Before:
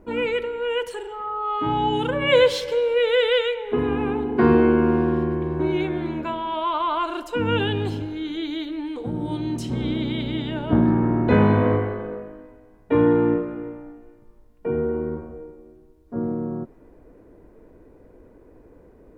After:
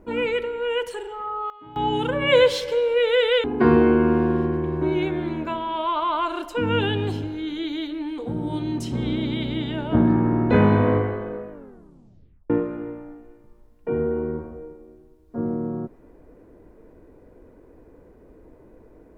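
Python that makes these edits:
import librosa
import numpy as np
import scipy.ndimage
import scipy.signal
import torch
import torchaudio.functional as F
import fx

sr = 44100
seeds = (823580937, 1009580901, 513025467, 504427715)

y = fx.edit(x, sr, fx.fade_down_up(start_s=1.02, length_s=1.22, db=-20.0, fade_s=0.48, curve='log'),
    fx.cut(start_s=3.44, length_s=0.78),
    fx.tape_stop(start_s=12.28, length_s=1.0), tone=tone)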